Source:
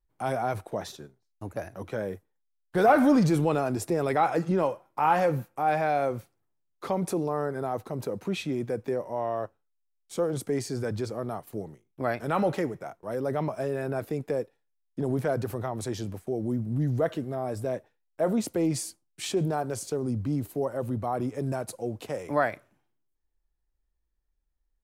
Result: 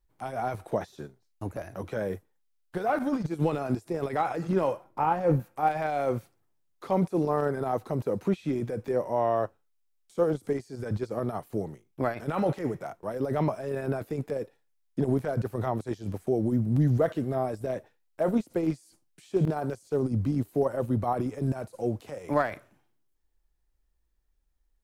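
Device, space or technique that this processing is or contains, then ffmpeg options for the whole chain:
de-esser from a sidechain: -filter_complex "[0:a]asplit=2[link_01][link_02];[link_02]highpass=frequency=4300:width=0.5412,highpass=frequency=4300:width=1.3066,apad=whole_len=1095396[link_03];[link_01][link_03]sidechaincompress=threshold=-60dB:ratio=20:attack=1.4:release=24,asettb=1/sr,asplit=3[link_04][link_05][link_06];[link_04]atrim=end=4.844[link_07];[link_05]atrim=start=4.84:end=5.4,asetpts=PTS-STARTPTS,afade=type=in:duration=0.004:curve=qsin,afade=type=out:start_time=0.556:duration=0.004:curve=qsin,tiltshelf=frequency=970:gain=5.5[link_08];[link_06]atrim=start=5.396[link_09];[link_07][link_08]acrossfade=duration=0.004:curve1=hsin:curve2=qsin[link_10];[link_10][link_09]acrossfade=duration=0.004:curve1=qsin:curve2=hsin,volume=4.5dB"

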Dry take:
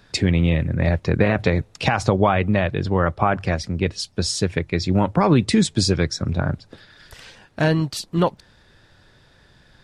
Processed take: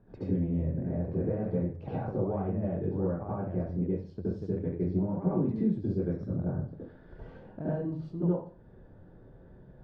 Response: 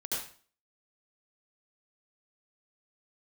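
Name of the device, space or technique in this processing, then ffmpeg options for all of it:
television next door: -filter_complex "[0:a]acompressor=threshold=-34dB:ratio=3,lowpass=550[link_01];[1:a]atrim=start_sample=2205[link_02];[link_01][link_02]afir=irnorm=-1:irlink=0"

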